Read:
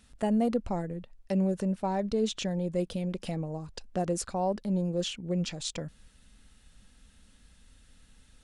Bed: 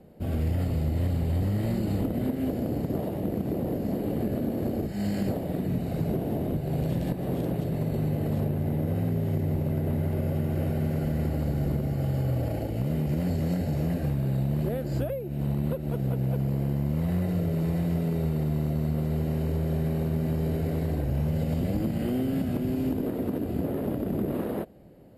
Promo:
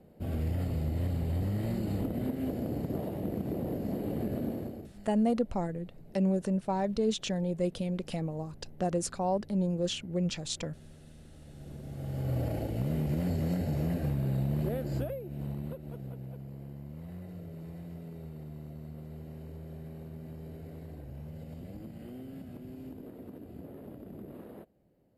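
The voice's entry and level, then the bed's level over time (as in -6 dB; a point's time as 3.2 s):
4.85 s, -0.5 dB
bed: 4.51 s -5 dB
5.14 s -26.5 dB
11.33 s -26.5 dB
12.36 s -3.5 dB
14.85 s -3.5 dB
16.42 s -17 dB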